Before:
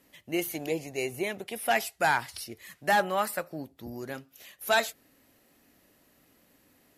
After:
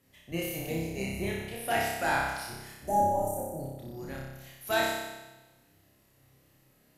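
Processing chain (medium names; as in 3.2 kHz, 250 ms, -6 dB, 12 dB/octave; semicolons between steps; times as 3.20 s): octave divider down 1 oct, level +3 dB; time-frequency box 2.79–3.59 s, 990–5700 Hz -27 dB; flutter echo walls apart 5.2 m, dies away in 1.1 s; trim -7 dB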